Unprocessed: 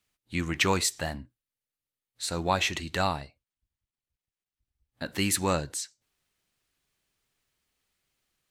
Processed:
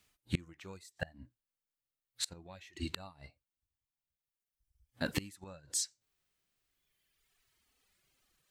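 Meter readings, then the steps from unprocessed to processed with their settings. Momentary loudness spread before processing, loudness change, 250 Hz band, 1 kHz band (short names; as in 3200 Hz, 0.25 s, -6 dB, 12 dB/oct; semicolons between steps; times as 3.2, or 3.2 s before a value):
12 LU, -11.5 dB, -10.5 dB, -22.0 dB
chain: harmonic-percussive split percussive -11 dB; reverb removal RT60 1.8 s; flipped gate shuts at -28 dBFS, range -29 dB; gain +10 dB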